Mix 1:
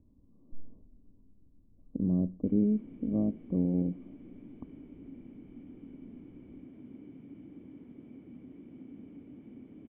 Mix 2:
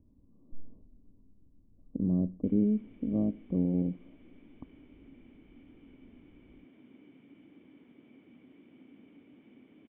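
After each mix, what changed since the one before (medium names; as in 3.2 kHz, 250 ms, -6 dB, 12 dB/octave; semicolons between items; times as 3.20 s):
background: add tilt EQ +4 dB/octave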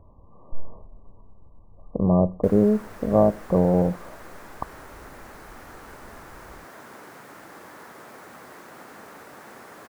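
master: remove cascade formant filter i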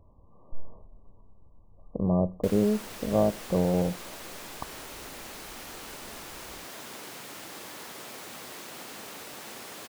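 speech -5.5 dB; master: add resonant high shelf 2.2 kHz +9.5 dB, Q 1.5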